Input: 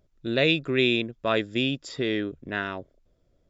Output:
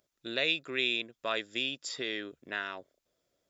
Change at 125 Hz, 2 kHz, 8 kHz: -21.0 dB, -5.0 dB, n/a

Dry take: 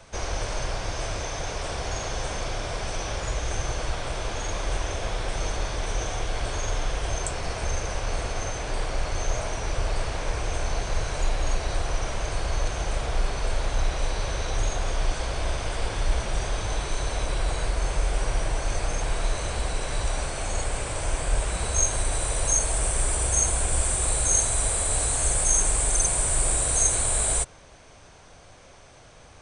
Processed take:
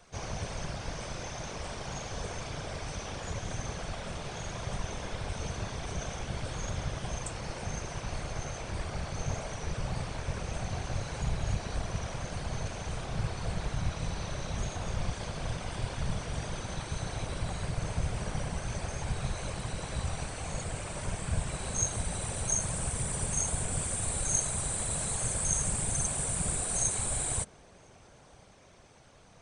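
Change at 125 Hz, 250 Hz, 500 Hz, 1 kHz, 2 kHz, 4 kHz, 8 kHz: -3.5, -1.0, -8.0, -8.0, -8.0, -8.0, -8.0 dB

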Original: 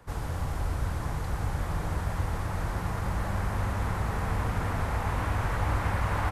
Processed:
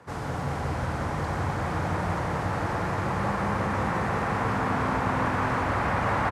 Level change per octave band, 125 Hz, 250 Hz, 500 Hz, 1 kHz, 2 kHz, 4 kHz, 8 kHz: 0.0, +7.0, +7.0, +7.0, +6.0, +3.0, -0.5 dB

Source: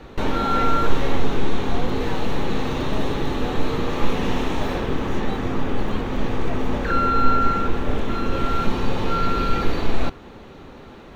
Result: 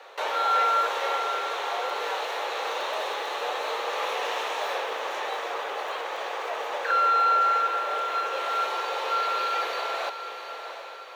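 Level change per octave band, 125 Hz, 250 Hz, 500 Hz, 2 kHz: under -40 dB, -26.5 dB, -4.5 dB, +0.5 dB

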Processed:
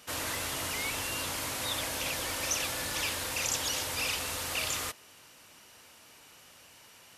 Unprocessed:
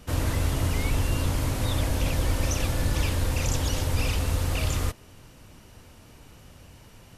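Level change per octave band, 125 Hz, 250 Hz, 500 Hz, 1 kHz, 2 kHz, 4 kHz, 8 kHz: -21.0, -12.5, -6.5, -2.5, +1.0, +2.0, +2.5 dB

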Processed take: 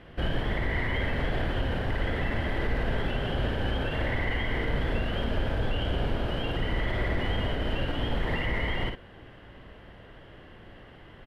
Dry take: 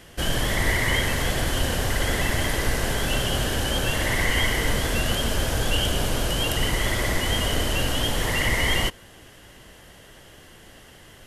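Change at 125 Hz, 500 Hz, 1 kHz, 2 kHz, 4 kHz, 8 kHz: -3.5 dB, -4.0 dB, -5.5 dB, -7.5 dB, -12.0 dB, under -30 dB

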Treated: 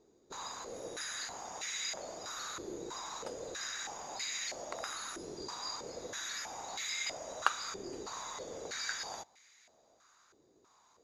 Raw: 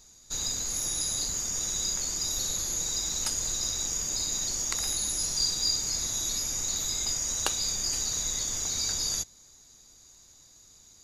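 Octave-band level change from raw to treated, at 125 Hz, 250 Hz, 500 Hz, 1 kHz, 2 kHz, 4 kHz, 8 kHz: -16.5, -4.5, +3.0, +4.0, +2.5, -11.0, -16.5 dB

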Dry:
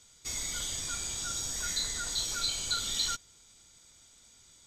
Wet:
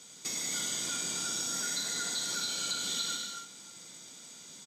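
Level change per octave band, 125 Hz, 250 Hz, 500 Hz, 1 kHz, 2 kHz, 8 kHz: -5.0, +5.0, +3.0, +0.5, +1.0, +0.5 dB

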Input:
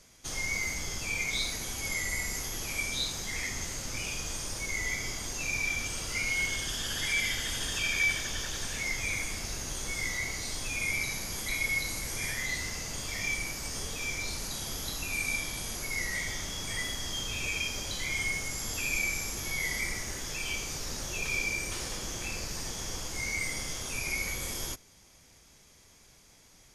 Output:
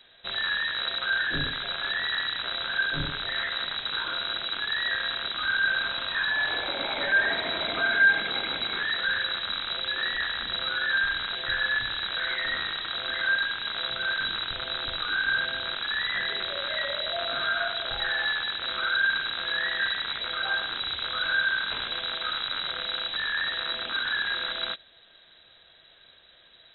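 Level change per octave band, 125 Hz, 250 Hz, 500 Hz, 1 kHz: -5.5, -1.0, +6.5, +10.5 dB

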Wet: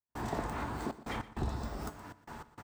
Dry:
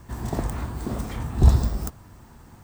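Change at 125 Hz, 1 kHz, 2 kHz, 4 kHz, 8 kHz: -18.0, -2.5, -1.0, -6.5, -11.5 dB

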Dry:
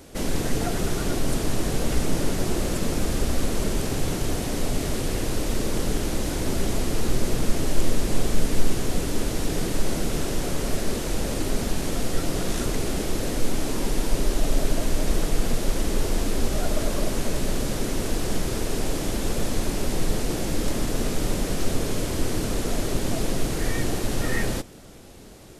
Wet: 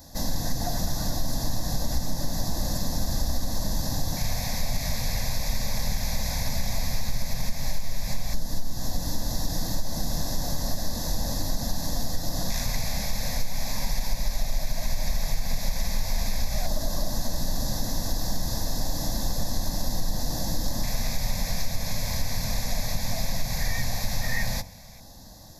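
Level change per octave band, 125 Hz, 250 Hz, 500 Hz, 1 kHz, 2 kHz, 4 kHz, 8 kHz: -2.5, -7.5, -9.5, -2.5, -3.5, +1.0, -1.0 dB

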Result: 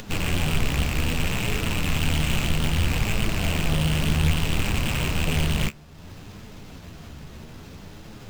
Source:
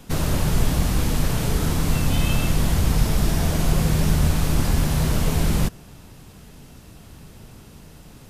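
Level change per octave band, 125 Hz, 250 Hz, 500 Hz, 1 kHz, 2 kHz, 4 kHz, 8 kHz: -3.0, -3.5, -3.5, -2.5, +4.0, +2.5, -3.5 dB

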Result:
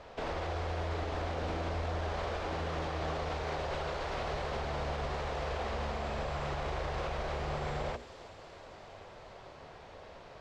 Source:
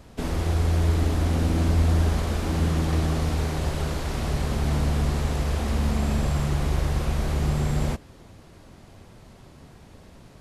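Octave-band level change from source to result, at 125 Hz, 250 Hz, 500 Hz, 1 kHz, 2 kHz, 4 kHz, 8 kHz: -16.0, -16.0, -3.5, -2.0, -4.0, -7.0, -16.0 dB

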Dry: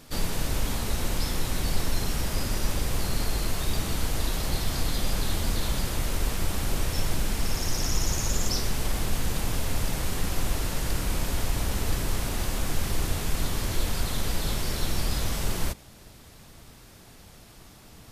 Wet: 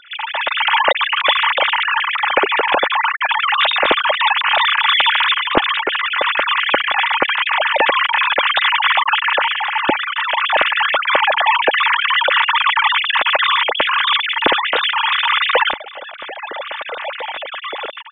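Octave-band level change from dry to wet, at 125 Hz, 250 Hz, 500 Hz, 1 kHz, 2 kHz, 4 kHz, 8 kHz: under -15 dB, +1.5 dB, +14.5 dB, +22.5 dB, +23.5 dB, +18.0 dB, under -40 dB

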